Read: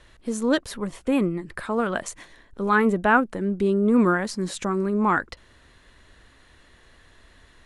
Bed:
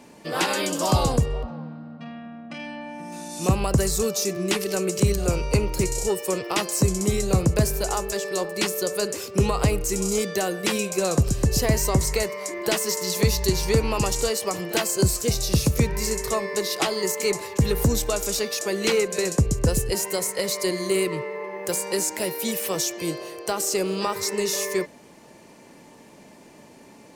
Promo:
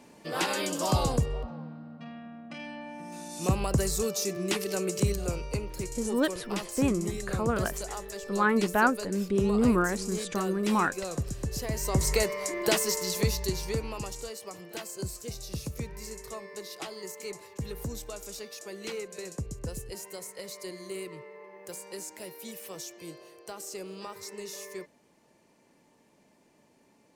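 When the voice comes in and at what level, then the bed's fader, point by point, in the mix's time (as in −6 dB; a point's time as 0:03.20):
5.70 s, −5.0 dB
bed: 0:04.98 −5.5 dB
0:05.63 −12 dB
0:11.70 −12 dB
0:12.11 −1.5 dB
0:12.72 −1.5 dB
0:14.25 −15.5 dB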